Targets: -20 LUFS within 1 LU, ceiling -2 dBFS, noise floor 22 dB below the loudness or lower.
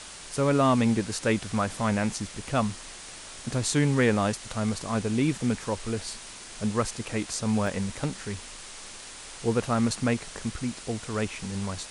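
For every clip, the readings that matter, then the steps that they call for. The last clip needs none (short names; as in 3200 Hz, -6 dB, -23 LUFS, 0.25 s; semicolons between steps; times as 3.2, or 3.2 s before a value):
dropouts 1; longest dropout 1.5 ms; noise floor -43 dBFS; noise floor target -50 dBFS; loudness -28.0 LUFS; peak -8.5 dBFS; loudness target -20.0 LUFS
-> interpolate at 7.67, 1.5 ms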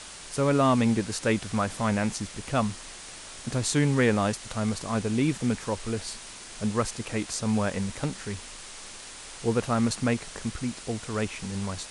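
dropouts 0; noise floor -43 dBFS; noise floor target -50 dBFS
-> noise print and reduce 7 dB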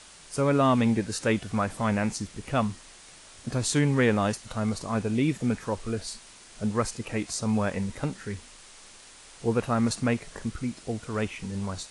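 noise floor -50 dBFS; loudness -28.0 LUFS; peak -8.5 dBFS; loudness target -20.0 LUFS
-> gain +8 dB; limiter -2 dBFS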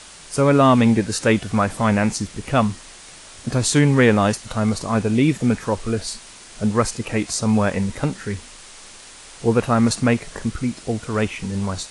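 loudness -20.0 LUFS; peak -2.0 dBFS; noise floor -42 dBFS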